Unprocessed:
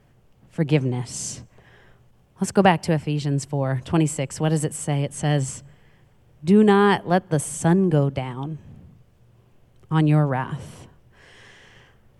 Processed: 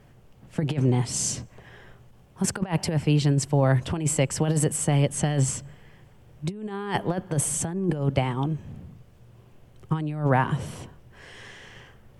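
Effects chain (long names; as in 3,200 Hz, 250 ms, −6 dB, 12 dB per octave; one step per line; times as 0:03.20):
compressor whose output falls as the input rises −22 dBFS, ratio −0.5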